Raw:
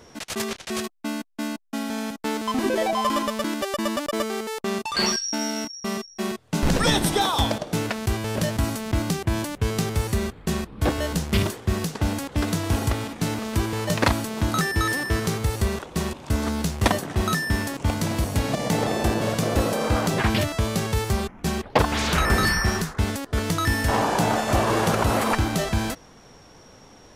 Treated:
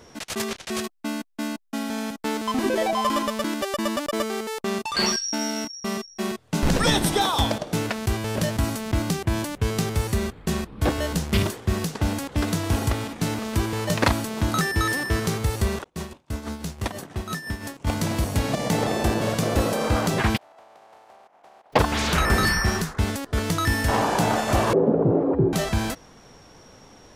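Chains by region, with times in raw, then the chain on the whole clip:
15.84–17.87 expander -30 dBFS + compressor 1.5:1, threshold -34 dBFS + tremolo 6 Hz, depth 64%
20.36–21.72 spectral contrast lowered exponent 0.26 + band-pass 730 Hz, Q 3.8 + compressor 4:1, threshold -49 dBFS
24.73–25.53 frequency shift +56 Hz + synth low-pass 430 Hz, resonance Q 2.7
whole clip: dry

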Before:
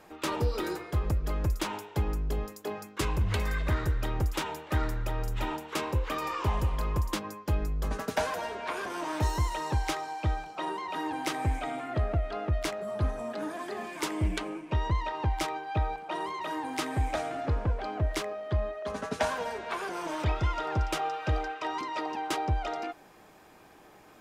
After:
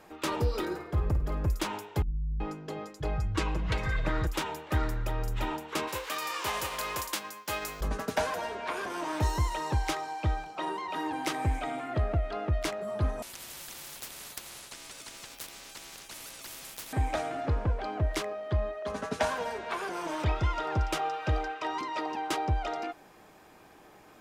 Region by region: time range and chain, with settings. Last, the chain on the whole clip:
0.65–1.48 high shelf 2800 Hz -10 dB + flutter echo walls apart 8.7 m, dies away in 0.3 s
2.02–4.27 air absorption 64 m + comb 6.3 ms, depth 56% + bands offset in time lows, highs 0.38 s, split 160 Hz
5.87–7.8 spectral whitening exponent 0.6 + HPF 660 Hz 6 dB/oct
13.22–16.93 HPF 1300 Hz + ring modulator 1600 Hz + spectral compressor 10:1
whole clip: dry

